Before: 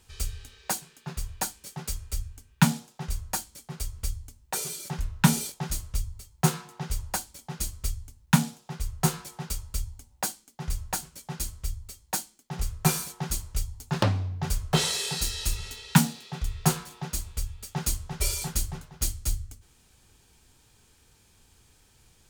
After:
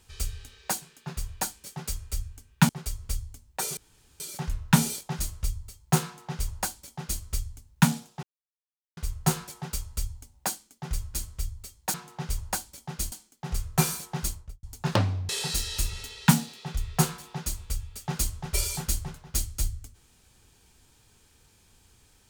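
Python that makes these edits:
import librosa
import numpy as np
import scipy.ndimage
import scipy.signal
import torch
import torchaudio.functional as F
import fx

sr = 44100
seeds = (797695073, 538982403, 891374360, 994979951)

y = fx.studio_fade_out(x, sr, start_s=13.31, length_s=0.39)
y = fx.edit(y, sr, fx.cut(start_s=2.69, length_s=0.94),
    fx.insert_room_tone(at_s=4.71, length_s=0.43),
    fx.duplicate(start_s=6.55, length_s=1.18, to_s=12.19),
    fx.insert_silence(at_s=8.74, length_s=0.74),
    fx.cut(start_s=10.91, length_s=0.48),
    fx.cut(start_s=14.36, length_s=0.6), tone=tone)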